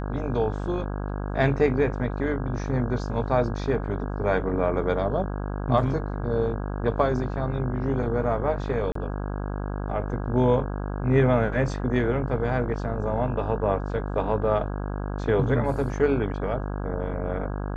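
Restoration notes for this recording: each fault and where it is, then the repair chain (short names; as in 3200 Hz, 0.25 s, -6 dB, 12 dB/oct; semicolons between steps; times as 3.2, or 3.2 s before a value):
buzz 50 Hz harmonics 33 -30 dBFS
8.92–8.95 gap 34 ms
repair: de-hum 50 Hz, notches 33; interpolate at 8.92, 34 ms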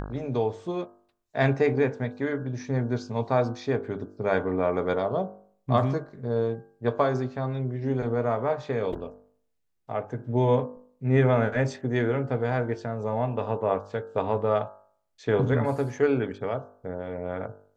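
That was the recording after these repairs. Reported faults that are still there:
none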